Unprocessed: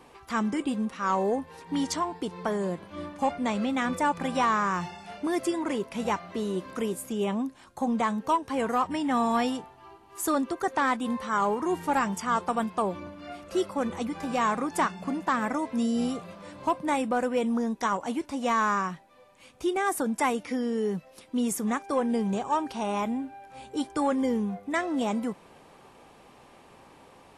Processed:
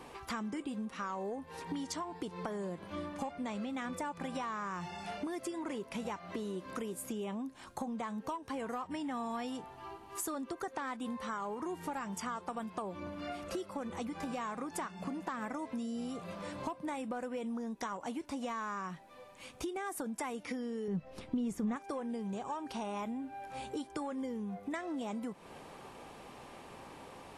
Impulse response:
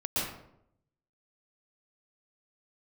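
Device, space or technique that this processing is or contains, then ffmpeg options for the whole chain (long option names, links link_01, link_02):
serial compression, leveller first: -filter_complex "[0:a]acompressor=threshold=-29dB:ratio=2,acompressor=threshold=-40dB:ratio=5,asettb=1/sr,asplit=3[link_01][link_02][link_03];[link_01]atrim=end=20.884[link_04];[link_02]atrim=start=20.88:end=21.76,asetpts=PTS-STARTPTS,afade=type=in:duration=0.004:curve=qsin,afade=type=out:start_time=0.876:duration=0.004:curve=qsin,aemphasis=mode=reproduction:type=bsi[link_05];[link_03]atrim=start=21.756[link_06];[link_04][link_05]acrossfade=duration=0.004:curve1=hsin:curve2=qsin[link_07];[link_07][link_06]acrossfade=duration=0.004:curve1=qsin:curve2=hsin,volume=2.5dB"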